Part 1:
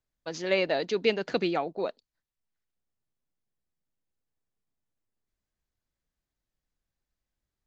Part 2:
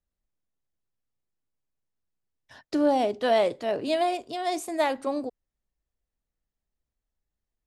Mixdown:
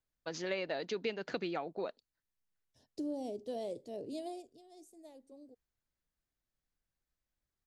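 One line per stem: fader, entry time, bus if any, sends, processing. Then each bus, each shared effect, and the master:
−4.0 dB, 0.00 s, no send, parametric band 1,500 Hz +2 dB
0:04.29 −11 dB → 0:04.67 −24 dB, 0.25 s, no send, drawn EQ curve 470 Hz 0 dB, 1,400 Hz −25 dB, 5,900 Hz 0 dB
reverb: not used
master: downward compressor 3 to 1, threshold −35 dBFS, peak gain reduction 10 dB

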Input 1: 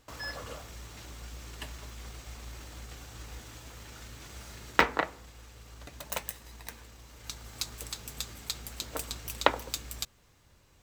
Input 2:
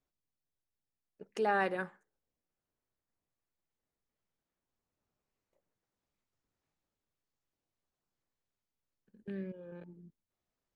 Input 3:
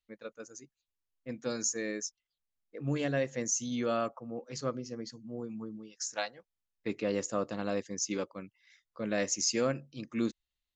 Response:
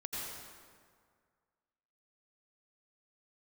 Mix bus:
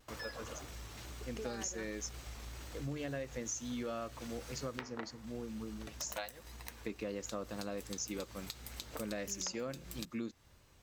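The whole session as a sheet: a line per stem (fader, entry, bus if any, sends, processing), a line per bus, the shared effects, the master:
−2.0 dB, 0.00 s, send −23.5 dB, notch filter 7,300 Hz, Q 20; downward compressor 3 to 1, threshold −41 dBFS, peak gain reduction 18.5 dB; pitch vibrato 2 Hz 59 cents
−3.5 dB, 0.00 s, no send, downward compressor, threshold −37 dBFS, peak gain reduction 11.5 dB
−2.0 dB, 0.00 s, no send, no processing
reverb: on, RT60 1.9 s, pre-delay 78 ms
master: downward compressor 5 to 1, threshold −37 dBFS, peak gain reduction 10 dB

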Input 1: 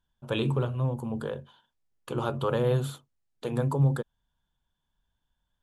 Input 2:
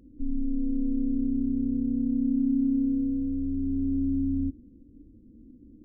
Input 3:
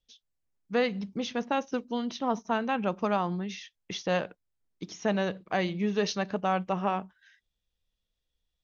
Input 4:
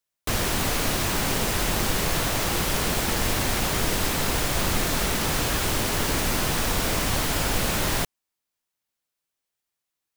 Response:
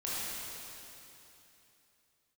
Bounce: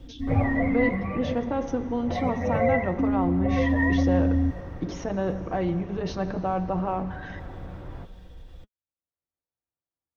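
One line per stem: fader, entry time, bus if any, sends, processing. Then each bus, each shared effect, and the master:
+1.5 dB, 0.00 s, send −18 dB, frequency axis turned over on the octave scale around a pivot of 510 Hz; high-shelf EQ 4,400 Hz +11 dB; phaser with its sweep stopped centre 1,300 Hz, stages 6
−7.5 dB, 0.00 s, muted 0:00.89–0:02.99, no send, high-pass filter 49 Hz; low-shelf EQ 190 Hz +12 dB
−6.5 dB, 0.00 s, send −16.5 dB, high-shelf EQ 3,900 Hz −10 dB; envelope flattener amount 70%
−8.5 dB, 0.00 s, no send, low-pass filter 1,700 Hz 12 dB per octave; parametric band 80 Hz +8.5 dB 0.39 octaves; automatic ducking −11 dB, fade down 1.45 s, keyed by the third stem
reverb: on, RT60 3.1 s, pre-delay 18 ms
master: tilt shelving filter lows +7.5 dB, about 1,400 Hz; notch comb filter 210 Hz

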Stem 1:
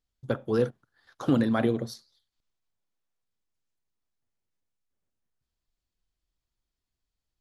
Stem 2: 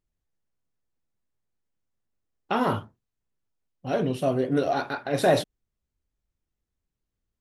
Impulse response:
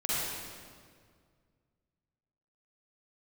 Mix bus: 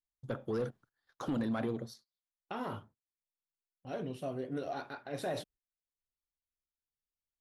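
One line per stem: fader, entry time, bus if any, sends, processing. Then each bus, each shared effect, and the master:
−3.5 dB, 0.00 s, no send, soft clipping −19 dBFS, distortion −15 dB; automatic ducking −17 dB, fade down 0.95 s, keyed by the second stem
−13.5 dB, 0.00 s, no send, no processing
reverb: not used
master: noise gate −59 dBFS, range −15 dB; brickwall limiter −28 dBFS, peak gain reduction 5 dB

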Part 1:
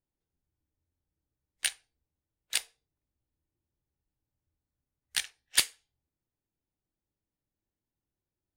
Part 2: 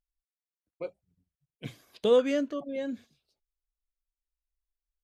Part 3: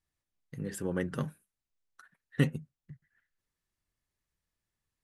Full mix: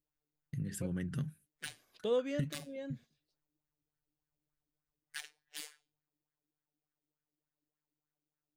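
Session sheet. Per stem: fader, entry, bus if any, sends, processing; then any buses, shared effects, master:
−4.5 dB, 0.00 s, no send, phases set to zero 150 Hz; auto-filter bell 3.4 Hz 270–1,700 Hz +13 dB
−10.0 dB, 0.00 s, no send, no processing
−1.0 dB, 0.00 s, no send, noise gate −58 dBFS, range −19 dB; graphic EQ with 10 bands 125 Hz +9 dB, 500 Hz −10 dB, 1,000 Hz −11 dB; downward compressor 16 to 1, threshold −32 dBFS, peak gain reduction 18 dB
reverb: not used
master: brickwall limiter −22 dBFS, peak gain reduction 18.5 dB

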